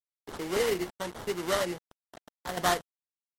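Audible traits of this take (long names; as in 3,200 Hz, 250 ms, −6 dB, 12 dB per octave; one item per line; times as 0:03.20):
aliases and images of a low sample rate 2,500 Hz, jitter 20%
sample-and-hold tremolo 3.5 Hz, depth 55%
a quantiser's noise floor 8 bits, dither none
MP3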